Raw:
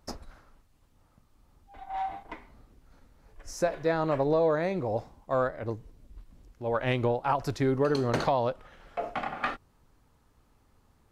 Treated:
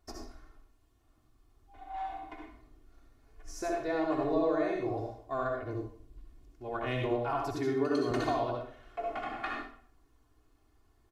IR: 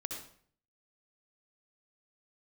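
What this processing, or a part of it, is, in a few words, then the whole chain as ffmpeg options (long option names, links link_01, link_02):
microphone above a desk: -filter_complex "[0:a]aecho=1:1:2.8:0.88[link_01];[1:a]atrim=start_sample=2205[link_02];[link_01][link_02]afir=irnorm=-1:irlink=0,asettb=1/sr,asplit=3[link_03][link_04][link_05];[link_03]atrim=end=7.564[link_06];[link_04]atrim=start=7.56:end=8.11,asetpts=PTS-STARTPTS,afade=type=in:duration=0.004:curve=qsin,afade=type=out:start_time=0.546:duration=0.004:curve=qsin,highpass=130[link_07];[link_05]atrim=start=8.106[link_08];[link_06][link_07]acrossfade=duration=0.004:curve1=hsin:curve2=qsin[link_09];[link_09][link_08]acrossfade=duration=0.004:curve1=qsin:curve2=hsin,volume=-6.5dB"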